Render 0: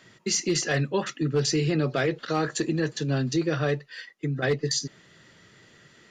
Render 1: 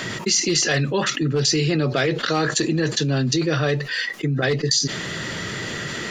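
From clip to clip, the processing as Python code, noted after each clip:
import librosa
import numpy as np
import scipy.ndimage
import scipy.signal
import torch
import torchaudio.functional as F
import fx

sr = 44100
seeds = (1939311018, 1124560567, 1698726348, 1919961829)

y = fx.dynamic_eq(x, sr, hz=4400.0, q=0.75, threshold_db=-41.0, ratio=4.0, max_db=7)
y = fx.env_flatten(y, sr, amount_pct=70)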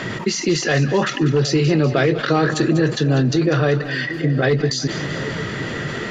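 y = fx.lowpass(x, sr, hz=1700.0, slope=6)
y = fx.echo_split(y, sr, split_hz=680.0, low_ms=753, high_ms=195, feedback_pct=52, wet_db=-12.5)
y = F.gain(torch.from_numpy(y), 4.5).numpy()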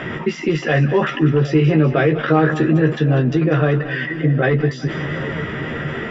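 y = scipy.signal.savgol_filter(x, 25, 4, mode='constant')
y = fx.doubler(y, sr, ms=13.0, db=-5.5)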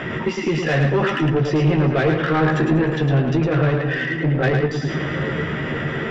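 y = 10.0 ** (-13.5 / 20.0) * np.tanh(x / 10.0 ** (-13.5 / 20.0))
y = y + 10.0 ** (-5.0 / 20.0) * np.pad(y, (int(108 * sr / 1000.0), 0))[:len(y)]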